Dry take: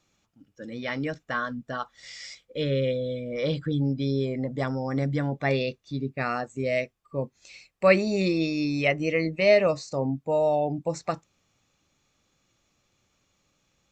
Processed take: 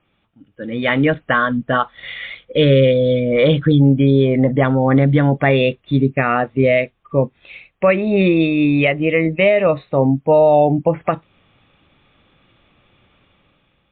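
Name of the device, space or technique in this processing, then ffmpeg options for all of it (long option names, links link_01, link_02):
low-bitrate web radio: -af "dynaudnorm=framelen=210:gausssize=7:maxgain=9dB,alimiter=limit=-11.5dB:level=0:latency=1:release=266,volume=7.5dB" -ar 8000 -c:a libmp3lame -b:a 40k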